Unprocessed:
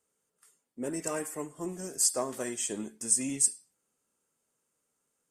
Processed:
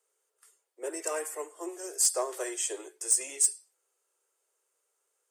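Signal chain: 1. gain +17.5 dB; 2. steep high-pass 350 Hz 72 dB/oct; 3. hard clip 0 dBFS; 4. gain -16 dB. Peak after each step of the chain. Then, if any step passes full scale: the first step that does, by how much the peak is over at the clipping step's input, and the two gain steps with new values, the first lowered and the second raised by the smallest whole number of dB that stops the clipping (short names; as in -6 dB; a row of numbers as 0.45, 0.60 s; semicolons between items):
+7.0, +7.0, 0.0, -16.0 dBFS; step 1, 7.0 dB; step 1 +10.5 dB, step 4 -9 dB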